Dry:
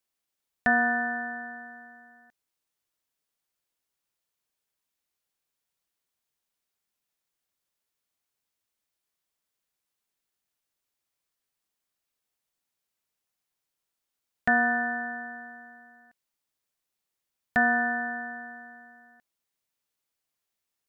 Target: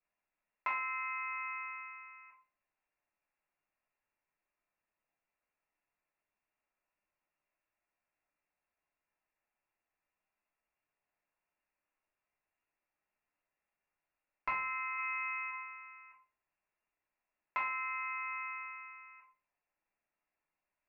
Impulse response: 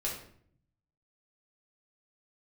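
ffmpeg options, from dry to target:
-filter_complex "[0:a]lowpass=f=2400:t=q:w=0.5098,lowpass=f=2400:t=q:w=0.6013,lowpass=f=2400:t=q:w=0.9,lowpass=f=2400:t=q:w=2.563,afreqshift=-2800,acompressor=threshold=0.0141:ratio=6,asplit=3[s0][s1][s2];[s0]afade=t=out:st=14.97:d=0.02[s3];[s1]aemphasis=mode=production:type=riaa,afade=t=in:st=14.97:d=0.02,afade=t=out:st=15.5:d=0.02[s4];[s2]afade=t=in:st=15.5:d=0.02[s5];[s3][s4][s5]amix=inputs=3:normalize=0[s6];[1:a]atrim=start_sample=2205,asetrate=70560,aresample=44100[s7];[s6][s7]afir=irnorm=-1:irlink=0,volume=1.33"

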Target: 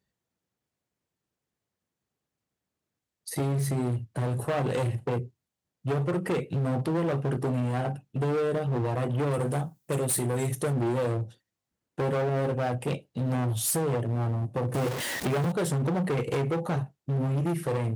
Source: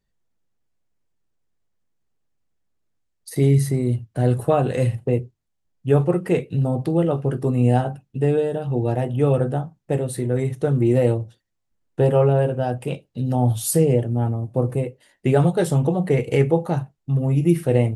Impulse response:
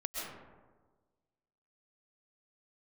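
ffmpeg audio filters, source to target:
-filter_complex "[0:a]asettb=1/sr,asplit=3[s0][s1][s2];[s0]atrim=end=14.744[s3];[s1]atrim=start=14.74:end=15.52,asetpts=PTS-STARTPTS,afade=t=in:d=0.004:c=qsin,afade=t=out:st=0.776:d=0.004:c=qsin,aeval=exprs='val(0)+0.5*0.0473*sgn(val(0))':c=same[s4];[s2]atrim=start=15.516[s5];[s3][s4]acrossfade=d=0.004:c1=hsin:c2=qsin[s6];[s6][s5]acrossfade=d=0.004:c1=qsin:c2=hsin,acompressor=threshold=0.141:ratio=12,asettb=1/sr,asplit=3[s7][s8][s9];[s7]atrim=end=9.314[s10];[s8]atrim=start=9.31:end=10.73,asetpts=PTS-STARTPTS,afade=t=in:d=0.004:c=qsin,afade=t=out:st=1.416:d=0.004:c=qsin,aemphasis=mode=production:type=75fm[s11];[s9]atrim=start=10.726[s12];[s10][s11]acrossfade=d=0.004:c1=hsin:c2=qsin[s13];[s13][s12]acrossfade=d=0.004:c1=qsin:c2=hsin,volume=15.8,asoftclip=hard,volume=0.0631,highpass=91"

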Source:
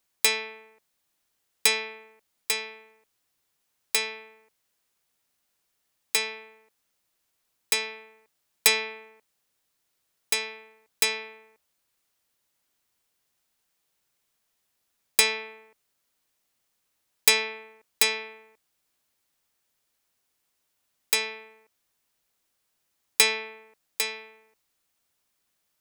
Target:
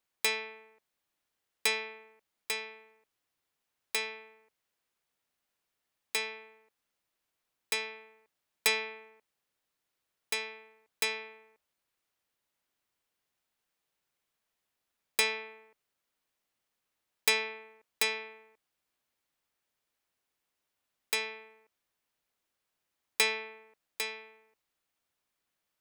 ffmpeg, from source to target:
-af "bass=f=250:g=-2,treble=f=4000:g=-6,volume=0.596"

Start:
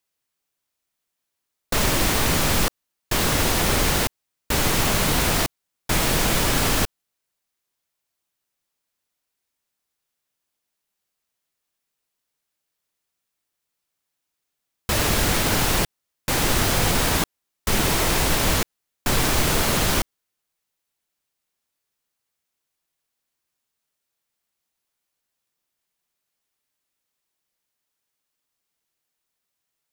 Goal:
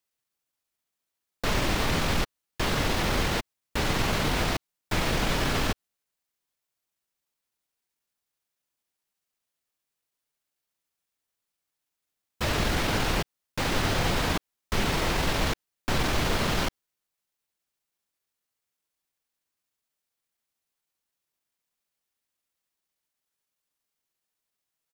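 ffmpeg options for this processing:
-filter_complex "[0:a]atempo=1.2,acrossover=split=5400[s0][s1];[s1]acompressor=threshold=0.0126:ratio=4:attack=1:release=60[s2];[s0][s2]amix=inputs=2:normalize=0,volume=0.631"

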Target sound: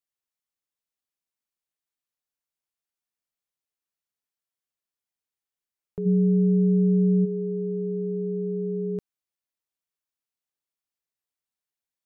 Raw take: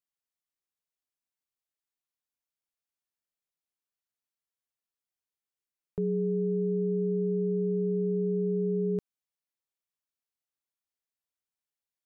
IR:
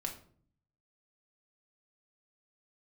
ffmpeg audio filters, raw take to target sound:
-filter_complex "[0:a]asplit=3[s0][s1][s2];[s0]afade=t=out:st=6.05:d=0.02[s3];[s1]equalizer=f=170:w=1.4:g=12,afade=t=in:st=6.05:d=0.02,afade=t=out:st=7.24:d=0.02[s4];[s2]afade=t=in:st=7.24:d=0.02[s5];[s3][s4][s5]amix=inputs=3:normalize=0"

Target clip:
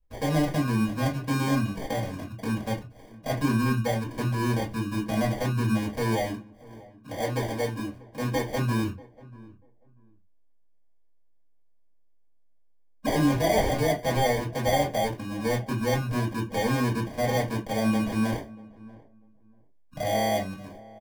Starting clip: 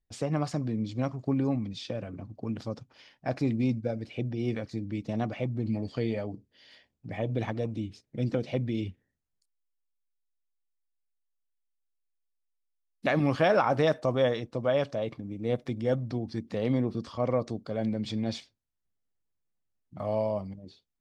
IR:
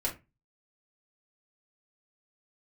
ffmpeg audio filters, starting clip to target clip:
-filter_complex "[0:a]asettb=1/sr,asplit=3[s0][s1][s2];[s0]atrim=end=6.314[s3];[s1]atrim=start=6.31:end=8.55,asetpts=PTS-STARTPTS,afade=t=in:d=0.004:c=qsin,afade=t=out:st=2.236:d=0.004:c=qsin,bass=f=250:g=-7,treble=f=4000:g=-9[s4];[s2]atrim=start=8.546[s5];[s3][s4]acrossfade=d=0.004:c1=hsin:c2=qsin[s6];[s6][s5]acrossfade=d=0.004:c1=qsin:c2=hsin,alimiter=limit=0.0891:level=0:latency=1:release=16,acrusher=samples=33:mix=1:aa=0.000001,asplit=2[s7][s8];[s8]adelay=639,lowpass=f=980:p=1,volume=0.1,asplit=2[s9][s10];[s10]adelay=639,lowpass=f=980:p=1,volume=0.2[s11];[s7][s9][s11]amix=inputs=3:normalize=0[s12];[1:a]atrim=start_sample=2205,afade=t=out:st=0.15:d=0.01,atrim=end_sample=7056,asetrate=48510,aresample=44100[s13];[s12][s13]afir=irnorm=-1:irlink=0"

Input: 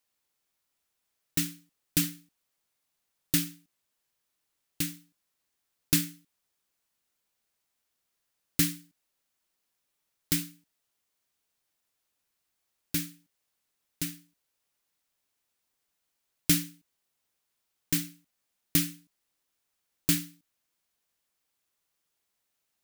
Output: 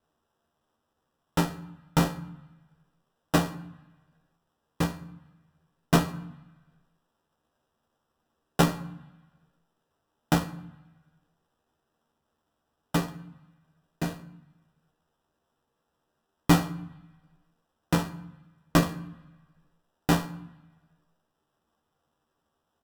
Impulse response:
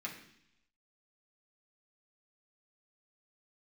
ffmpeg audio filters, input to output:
-filter_complex "[0:a]equalizer=f=160:t=o:w=1.2:g=6.5,acrusher=samples=20:mix=1:aa=0.000001,asplit=2[s0][s1];[s1]adelay=13,volume=0.501[s2];[s0][s2]amix=inputs=2:normalize=0,asplit=2[s3][s4];[1:a]atrim=start_sample=2205,asetrate=28665,aresample=44100[s5];[s4][s5]afir=irnorm=-1:irlink=0,volume=0.251[s6];[s3][s6]amix=inputs=2:normalize=0" -ar 48000 -c:a libopus -b:a 256k

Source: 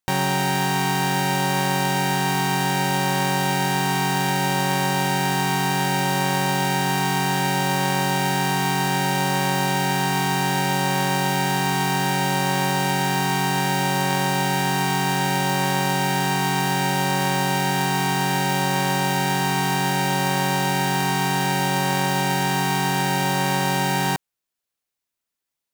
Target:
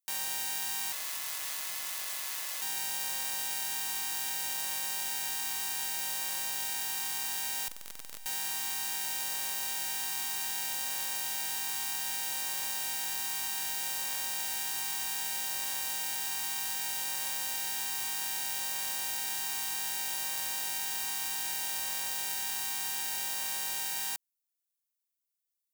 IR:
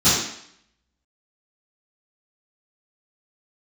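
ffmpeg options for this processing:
-filter_complex "[0:a]asettb=1/sr,asplit=3[s0][s1][s2];[s0]atrim=end=0.924[s3];[s1]atrim=start=0.92:end=2.62,asetpts=PTS-STARTPTS,afade=t=in:d=0.004:c=qsin,afade=t=out:st=1.696:d=0.004:c=qsin,aeval=exprs='abs(val(0))':c=same[s4];[s2]atrim=start=2.616[s5];[s3][s4]acrossfade=d=0.004:c1=hsin:c2=qsin[s6];[s6][s5]acrossfade=d=0.004:c1=qsin:c2=hsin,aderivative,asettb=1/sr,asplit=3[s7][s8][s9];[s7]atrim=end=7.684[s10];[s8]atrim=start=7.68:end=8.26,asetpts=PTS-STARTPTS,afade=t=in:d=0.004:c=qsin,afade=t=out:st=0.576:d=0.004:c=qsin,aeval=exprs='0.299*(cos(1*acos(clip(val(0)/0.299,-1,1)))-cos(1*PI/2))+0.0841*(cos(6*acos(clip(val(0)/0.299,-1,1)))-cos(6*PI/2))':c=same[s11];[s9]atrim=start=8.256[s12];[s10][s11]acrossfade=d=0.004:c1=hsin:c2=qsin[s13];[s13][s12]acrossfade=d=0.004:c1=qsin:c2=hsin,volume=0.596"

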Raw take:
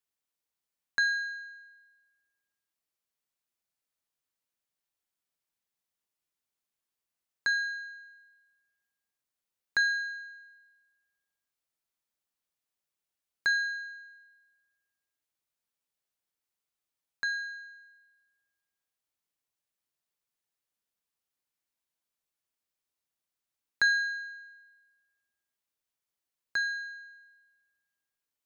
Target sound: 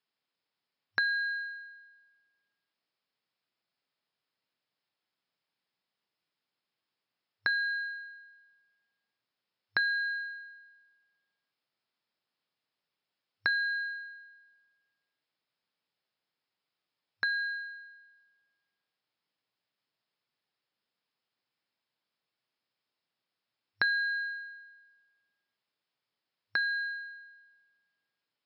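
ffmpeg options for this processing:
-af "bandreject=f=350.6:t=h:w=4,bandreject=f=701.2:t=h:w=4,bandreject=f=1051.8:t=h:w=4,bandreject=f=1402.4:t=h:w=4,bandreject=f=1753:t=h:w=4,bandreject=f=2103.6:t=h:w=4,bandreject=f=2454.2:t=h:w=4,bandreject=f=2804.8:t=h:w=4,bandreject=f=3155.4:t=h:w=4,bandreject=f=3506:t=h:w=4,bandreject=f=3856.6:t=h:w=4,acompressor=threshold=0.0178:ratio=3,afftfilt=real='re*between(b*sr/4096,100,5400)':imag='im*between(b*sr/4096,100,5400)':win_size=4096:overlap=0.75,volume=2"

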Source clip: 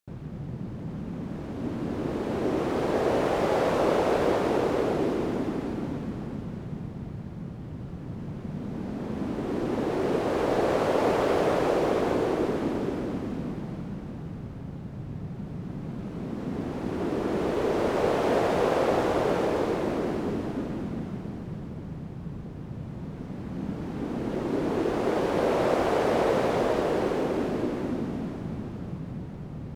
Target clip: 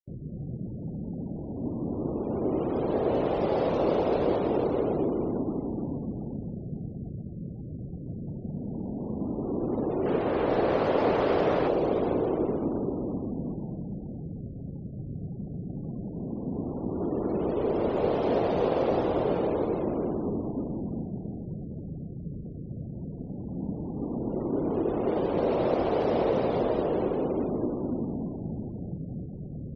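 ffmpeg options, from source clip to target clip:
-af "asetnsamples=n=441:p=0,asendcmd='10.06 equalizer g -2;11.68 equalizer g -9',equalizer=f=1600:w=1:g=-9.5,afftfilt=real='re*gte(hypot(re,im),0.00891)':imag='im*gte(hypot(re,im),0.00891)':win_size=1024:overlap=0.75"

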